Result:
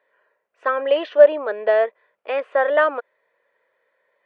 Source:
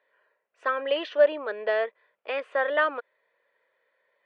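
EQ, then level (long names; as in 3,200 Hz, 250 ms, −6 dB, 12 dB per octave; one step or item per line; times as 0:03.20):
high-shelf EQ 3,400 Hz −9.5 dB
dynamic equaliser 690 Hz, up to +5 dB, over −37 dBFS, Q 1.6
+5.0 dB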